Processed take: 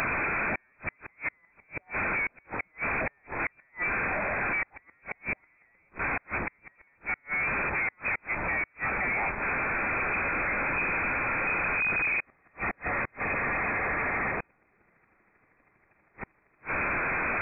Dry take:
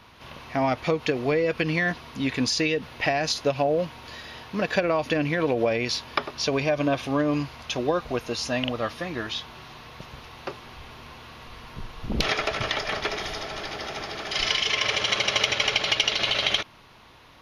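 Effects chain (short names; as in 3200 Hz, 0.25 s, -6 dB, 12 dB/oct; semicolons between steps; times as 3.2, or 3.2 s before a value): delta modulation 16 kbps, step -15 dBFS; flipped gate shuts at -14 dBFS, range -37 dB; inverted band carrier 2500 Hz; gain -7 dB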